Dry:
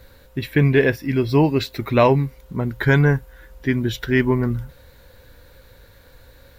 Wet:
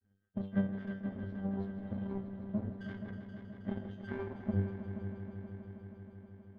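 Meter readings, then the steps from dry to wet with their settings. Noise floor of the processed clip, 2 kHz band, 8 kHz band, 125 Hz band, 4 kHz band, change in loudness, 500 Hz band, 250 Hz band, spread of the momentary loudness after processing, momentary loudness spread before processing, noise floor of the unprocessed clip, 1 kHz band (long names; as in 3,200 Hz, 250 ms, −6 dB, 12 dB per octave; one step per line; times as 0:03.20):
−70 dBFS, −27.0 dB, can't be measured, −19.5 dB, below −30 dB, −20.0 dB, −24.0 dB, −15.0 dB, 13 LU, 11 LU, −50 dBFS, −26.0 dB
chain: random phases in long frames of 50 ms
high-pass filter 45 Hz 12 dB per octave
mains-hum notches 60/120/180/240 Hz
reverb reduction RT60 0.63 s
drawn EQ curve 270 Hz 0 dB, 440 Hz −10 dB, 13,000 Hz +11 dB
downward compressor 10 to 1, threshold −29 dBFS, peak gain reduction 16.5 dB
leveller curve on the samples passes 2
resonances in every octave G, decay 0.76 s
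hollow resonant body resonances 220/1,400 Hz, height 17 dB, ringing for 40 ms
power curve on the samples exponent 2
on a send: echo machine with several playback heads 159 ms, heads all three, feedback 72%, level −13 dB
on the sum: level +6 dB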